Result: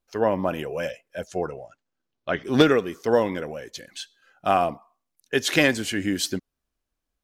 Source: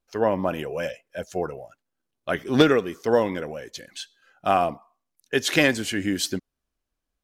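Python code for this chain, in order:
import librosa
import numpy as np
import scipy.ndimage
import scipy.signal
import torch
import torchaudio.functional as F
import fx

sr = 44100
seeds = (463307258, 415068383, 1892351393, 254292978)

y = fx.lowpass(x, sr, hz=fx.line((1.27, 11000.0), (2.43, 5100.0)), slope=24, at=(1.27, 2.43), fade=0.02)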